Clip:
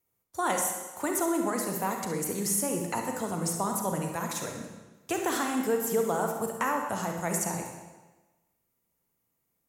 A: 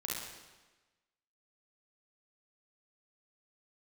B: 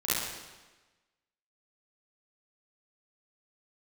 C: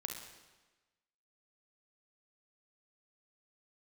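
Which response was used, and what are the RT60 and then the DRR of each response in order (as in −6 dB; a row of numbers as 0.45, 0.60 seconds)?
C; 1.2, 1.2, 1.2 seconds; −5.0, −12.0, 2.5 decibels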